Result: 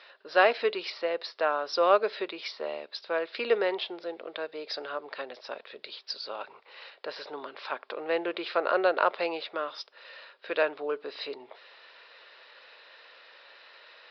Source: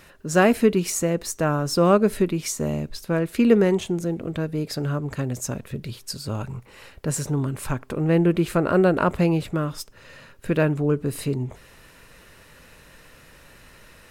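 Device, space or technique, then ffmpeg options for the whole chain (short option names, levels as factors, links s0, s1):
musical greeting card: -af "aresample=11025,aresample=44100,highpass=f=500:w=0.5412,highpass=f=500:w=1.3066,equalizer=f=3700:t=o:w=0.45:g=6,volume=0.841"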